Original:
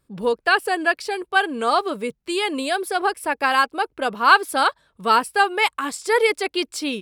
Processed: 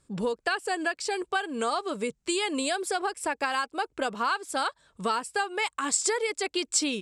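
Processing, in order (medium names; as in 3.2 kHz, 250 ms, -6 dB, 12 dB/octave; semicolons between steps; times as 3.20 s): compression 6:1, threshold -27 dBFS, peak gain reduction 18 dB; resonant low-pass 7.6 kHz, resonance Q 3.5; trim +1 dB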